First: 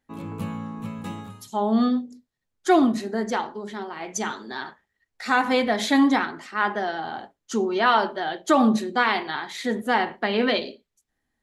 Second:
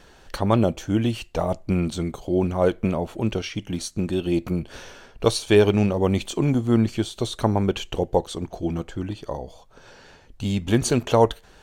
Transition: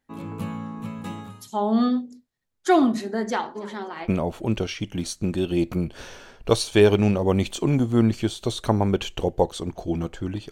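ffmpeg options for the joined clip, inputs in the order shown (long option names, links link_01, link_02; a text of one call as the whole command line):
ffmpeg -i cue0.wav -i cue1.wav -filter_complex "[0:a]asplit=3[link_01][link_02][link_03];[link_01]afade=type=out:start_time=3.55:duration=0.02[link_04];[link_02]asplit=4[link_05][link_06][link_07][link_08];[link_06]adelay=288,afreqshift=97,volume=-20dB[link_09];[link_07]adelay=576,afreqshift=194,volume=-28dB[link_10];[link_08]adelay=864,afreqshift=291,volume=-35.9dB[link_11];[link_05][link_09][link_10][link_11]amix=inputs=4:normalize=0,afade=type=in:start_time=3.55:duration=0.02,afade=type=out:start_time=4.1:duration=0.02[link_12];[link_03]afade=type=in:start_time=4.1:duration=0.02[link_13];[link_04][link_12][link_13]amix=inputs=3:normalize=0,apad=whole_dur=10.51,atrim=end=10.51,atrim=end=4.1,asetpts=PTS-STARTPTS[link_14];[1:a]atrim=start=2.77:end=9.26,asetpts=PTS-STARTPTS[link_15];[link_14][link_15]acrossfade=duration=0.08:curve1=tri:curve2=tri" out.wav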